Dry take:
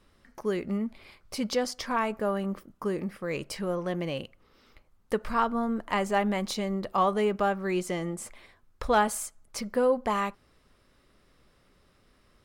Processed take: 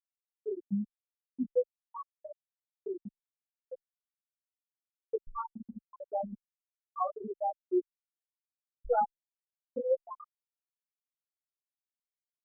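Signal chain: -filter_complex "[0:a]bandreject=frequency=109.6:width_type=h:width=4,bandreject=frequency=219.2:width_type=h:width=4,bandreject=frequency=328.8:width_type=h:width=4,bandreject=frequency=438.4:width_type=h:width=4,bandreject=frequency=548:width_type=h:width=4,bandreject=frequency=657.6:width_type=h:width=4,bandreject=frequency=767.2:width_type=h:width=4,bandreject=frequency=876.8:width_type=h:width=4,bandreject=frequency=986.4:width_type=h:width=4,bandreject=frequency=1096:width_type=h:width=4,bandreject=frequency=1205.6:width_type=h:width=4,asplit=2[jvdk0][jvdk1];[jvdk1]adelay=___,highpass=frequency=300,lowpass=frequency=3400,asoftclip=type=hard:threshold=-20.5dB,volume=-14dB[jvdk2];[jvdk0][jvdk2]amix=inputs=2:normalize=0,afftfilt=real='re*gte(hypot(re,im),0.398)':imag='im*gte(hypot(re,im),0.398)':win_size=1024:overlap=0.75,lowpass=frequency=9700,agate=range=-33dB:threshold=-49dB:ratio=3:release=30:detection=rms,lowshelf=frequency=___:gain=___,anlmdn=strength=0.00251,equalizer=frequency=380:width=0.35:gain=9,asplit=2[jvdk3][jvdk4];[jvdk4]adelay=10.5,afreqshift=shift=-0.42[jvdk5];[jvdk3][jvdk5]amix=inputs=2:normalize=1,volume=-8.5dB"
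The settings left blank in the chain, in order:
90, 160, 9.5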